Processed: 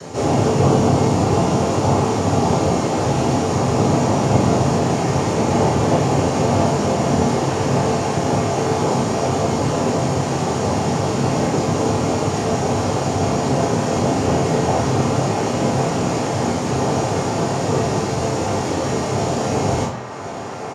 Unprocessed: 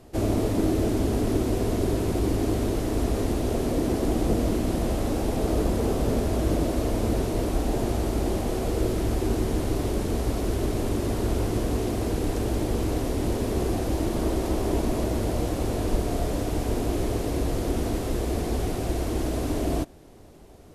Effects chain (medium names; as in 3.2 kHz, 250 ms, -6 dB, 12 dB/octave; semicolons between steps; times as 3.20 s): steep high-pass 180 Hz; upward compressor, threshold -31 dBFS; noise-vocoded speech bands 4; doubling 34 ms -7.5 dB; band-passed feedback delay 1083 ms, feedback 77%, band-pass 1.3 kHz, level -7 dB; reverberation RT60 0.50 s, pre-delay 3 ms, DRR -4.5 dB; trim -1 dB